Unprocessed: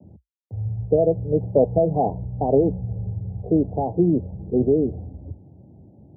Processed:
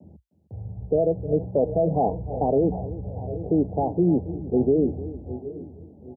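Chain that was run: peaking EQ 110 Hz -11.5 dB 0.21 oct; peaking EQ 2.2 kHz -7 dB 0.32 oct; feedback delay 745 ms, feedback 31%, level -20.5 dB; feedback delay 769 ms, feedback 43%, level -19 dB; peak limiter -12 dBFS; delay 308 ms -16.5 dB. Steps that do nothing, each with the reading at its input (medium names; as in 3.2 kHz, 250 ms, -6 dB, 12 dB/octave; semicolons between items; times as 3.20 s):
peaking EQ 2.2 kHz: input has nothing above 960 Hz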